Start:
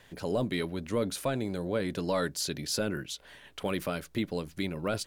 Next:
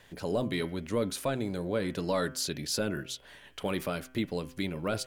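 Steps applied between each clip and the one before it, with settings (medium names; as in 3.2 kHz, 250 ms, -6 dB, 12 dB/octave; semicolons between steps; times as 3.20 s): de-hum 128.4 Hz, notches 26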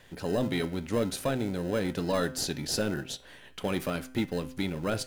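in parallel at -11 dB: sample-and-hold 39×; on the sum: feedback comb 260 Hz, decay 0.35 s, harmonics all, mix 50%; trim +6 dB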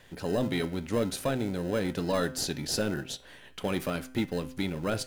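no audible change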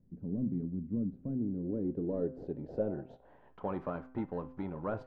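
low-pass sweep 220 Hz -> 1 kHz, 1.18–3.66 s; trim -7.5 dB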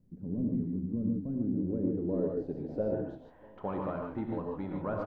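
echo from a far wall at 110 m, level -24 dB; reverberation, pre-delay 3 ms, DRR 1 dB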